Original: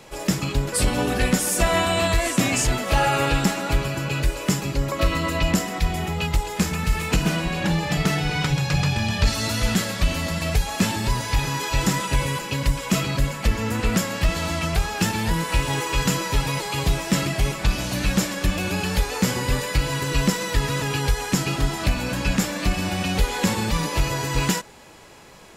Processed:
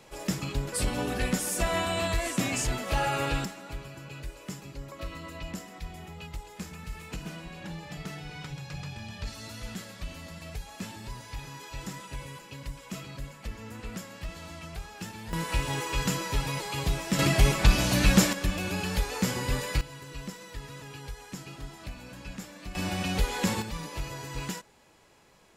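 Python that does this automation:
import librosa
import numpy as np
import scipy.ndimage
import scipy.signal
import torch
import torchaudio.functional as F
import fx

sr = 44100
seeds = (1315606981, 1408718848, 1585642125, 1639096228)

y = fx.gain(x, sr, db=fx.steps((0.0, -8.0), (3.45, -17.5), (15.33, -7.0), (17.19, 1.0), (18.33, -6.5), (19.81, -19.0), (22.75, -6.0), (23.62, -13.5)))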